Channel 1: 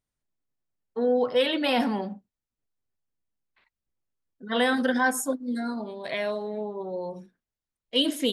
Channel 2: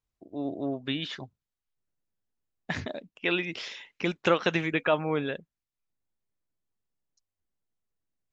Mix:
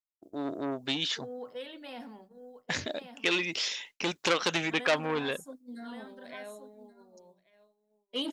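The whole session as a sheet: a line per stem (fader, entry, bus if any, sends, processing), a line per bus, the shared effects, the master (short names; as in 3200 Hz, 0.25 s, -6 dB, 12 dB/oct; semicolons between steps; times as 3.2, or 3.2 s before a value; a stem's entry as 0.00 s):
-8.5 dB, 0.20 s, no send, echo send -17 dB, notches 50/100/150/200 Hz; auto duck -11 dB, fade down 1.25 s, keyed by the second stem
+1.5 dB, 0.00 s, no send, no echo send, tone controls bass -6 dB, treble +13 dB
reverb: off
echo: echo 1.129 s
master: expander -45 dBFS; core saturation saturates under 3000 Hz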